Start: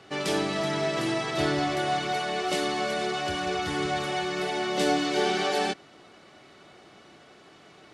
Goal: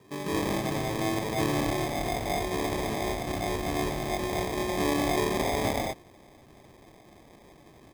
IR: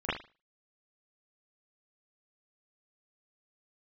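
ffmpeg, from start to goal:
-filter_complex "[0:a]acrossover=split=600[a][b];[b]adelay=200[c];[a][c]amix=inputs=2:normalize=0,acrusher=samples=31:mix=1:aa=0.000001"

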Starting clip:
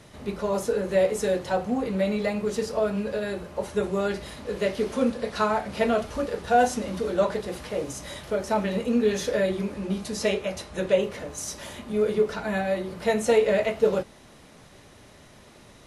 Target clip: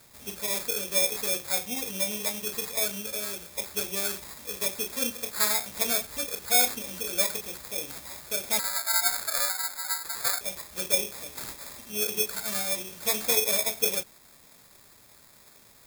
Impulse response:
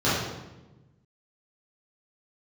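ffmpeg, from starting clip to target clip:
-filter_complex "[0:a]asettb=1/sr,asplit=3[a][b][c];[a]atrim=end=8.594[d];[b]atrim=start=8.59:end=10.41,asetpts=PTS-STARTPTS,afade=t=in:d=0.004:c=qsin,afade=t=out:st=1.816:d=0.004:c=qsin,aeval=exprs='val(0)*sin(2*PI*1800*n/s)':c=same[e];[c]atrim=start=10.406[f];[d][e]acrossfade=d=0.004:c1=hsin:c2=qsin[g];[g][f]acrossfade=d=0.004:c1=qsin:c2=hsin,acrusher=samples=15:mix=1:aa=0.000001,crystalizer=i=9:c=0,volume=-13dB"

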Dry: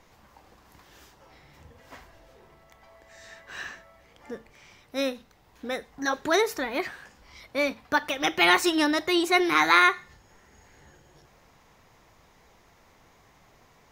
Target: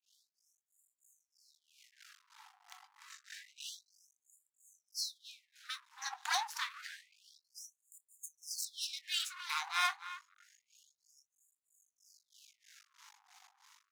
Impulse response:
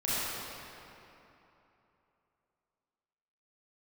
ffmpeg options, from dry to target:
-filter_complex "[0:a]asplit=2[a][b];[b]alimiter=limit=-16.5dB:level=0:latency=1:release=38,volume=1.5dB[c];[a][c]amix=inputs=2:normalize=0,aeval=exprs='val(0)+0.00158*(sin(2*PI*50*n/s)+sin(2*PI*2*50*n/s)/2+sin(2*PI*3*50*n/s)/3+sin(2*PI*4*50*n/s)/4+sin(2*PI*5*50*n/s)/5)':c=same,dynaudnorm=f=770:g=5:m=12.5dB,equalizer=f=250:t=o:w=1:g=-9,equalizer=f=500:t=o:w=1:g=11,equalizer=f=1k:t=o:w=1:g=-7,equalizer=f=2k:t=o:w=1:g=-7,acrossover=split=410[d][e];[d]aeval=exprs='val(0)*(1-1/2+1/2*cos(2*PI*3.1*n/s))':c=same[f];[e]aeval=exprs='val(0)*(1-1/2-1/2*cos(2*PI*3.1*n/s))':c=same[g];[f][g]amix=inputs=2:normalize=0,lowpass=11k,lowshelf=f=320:t=q:w=3:g=13,asplit=2[h][i];[i]adelay=25,volume=-13.5dB[j];[h][j]amix=inputs=2:normalize=0,asplit=2[k][l];[l]adelay=278,lowpass=f=1.7k:p=1,volume=-12dB,asplit=2[m][n];[n]adelay=278,lowpass=f=1.7k:p=1,volume=0.16[o];[k][m][o]amix=inputs=3:normalize=0,aeval=exprs='max(val(0),0)':c=same,afftfilt=real='re*gte(b*sr/1024,710*pow(6900/710,0.5+0.5*sin(2*PI*0.28*pts/sr)))':imag='im*gte(b*sr/1024,710*pow(6900/710,0.5+0.5*sin(2*PI*0.28*pts/sr)))':win_size=1024:overlap=0.75,volume=-5dB"

